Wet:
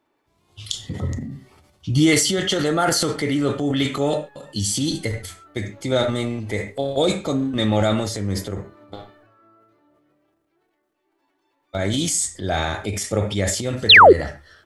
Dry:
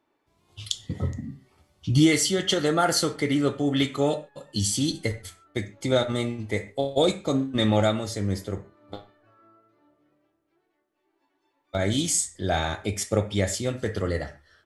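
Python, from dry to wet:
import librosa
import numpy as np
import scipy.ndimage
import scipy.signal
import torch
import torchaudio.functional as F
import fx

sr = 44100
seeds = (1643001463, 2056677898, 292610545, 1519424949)

y = fx.transient(x, sr, attack_db=-1, sustain_db=8)
y = fx.spec_paint(y, sr, seeds[0], shape='fall', start_s=13.89, length_s=0.24, low_hz=320.0, high_hz=4500.0, level_db=-9.0)
y = y * librosa.db_to_amplitude(2.0)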